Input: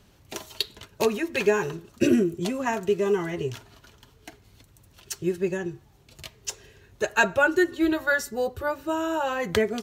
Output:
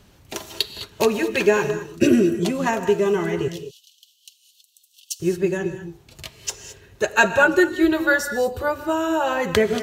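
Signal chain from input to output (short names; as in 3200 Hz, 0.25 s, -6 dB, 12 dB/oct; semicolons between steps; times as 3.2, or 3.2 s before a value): 3.48–5.2 steep high-pass 2800 Hz 96 dB/oct; non-linear reverb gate 0.24 s rising, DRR 10 dB; gain +4.5 dB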